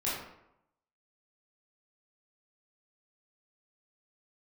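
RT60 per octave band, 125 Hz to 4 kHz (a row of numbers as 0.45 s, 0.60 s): 0.80 s, 0.80 s, 0.80 s, 0.80 s, 0.65 s, 0.50 s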